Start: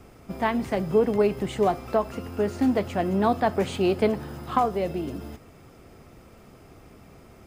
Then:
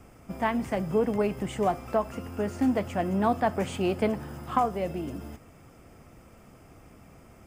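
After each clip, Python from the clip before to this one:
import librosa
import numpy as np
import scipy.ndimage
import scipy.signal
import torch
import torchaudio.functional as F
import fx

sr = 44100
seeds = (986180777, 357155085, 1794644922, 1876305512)

y = fx.graphic_eq_31(x, sr, hz=(400, 4000, 8000), db=(-5, -9, 3))
y = y * 10.0 ** (-2.0 / 20.0)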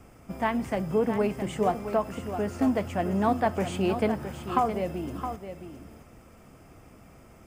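y = x + 10.0 ** (-9.5 / 20.0) * np.pad(x, (int(666 * sr / 1000.0), 0))[:len(x)]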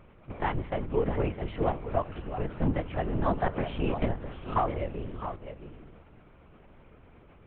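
y = fx.lpc_vocoder(x, sr, seeds[0], excitation='whisper', order=8)
y = y * 10.0 ** (-2.5 / 20.0)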